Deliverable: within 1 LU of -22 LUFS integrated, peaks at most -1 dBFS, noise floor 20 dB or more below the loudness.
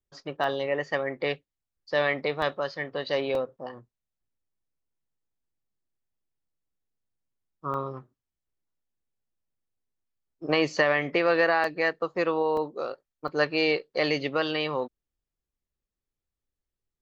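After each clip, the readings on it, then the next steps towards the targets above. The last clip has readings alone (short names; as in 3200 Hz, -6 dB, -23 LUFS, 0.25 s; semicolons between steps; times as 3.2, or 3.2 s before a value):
dropouts 7; longest dropout 2.6 ms; loudness -27.0 LUFS; peak -9.5 dBFS; loudness target -22.0 LUFS
-> interpolate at 0.44/2.42/3.35/7.74/11.64/12.57/13.28, 2.6 ms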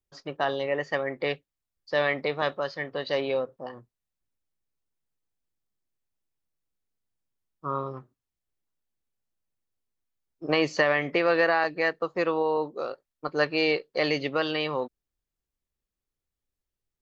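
dropouts 0; loudness -27.0 LUFS; peak -9.5 dBFS; loudness target -22.0 LUFS
-> gain +5 dB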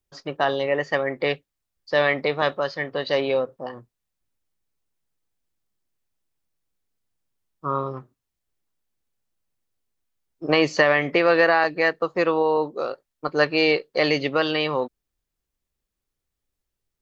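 loudness -22.0 LUFS; peak -4.5 dBFS; noise floor -83 dBFS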